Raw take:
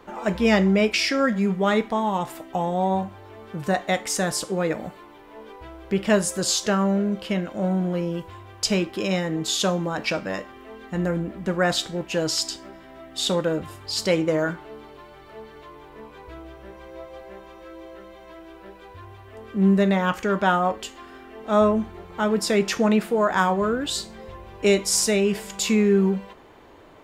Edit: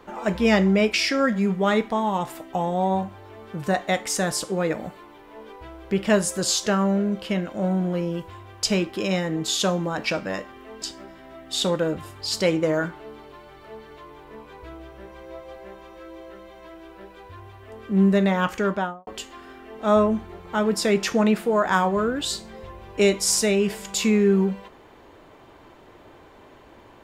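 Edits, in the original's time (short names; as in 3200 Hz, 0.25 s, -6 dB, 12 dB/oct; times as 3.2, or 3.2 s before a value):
10.82–12.47 cut
20.27–20.72 studio fade out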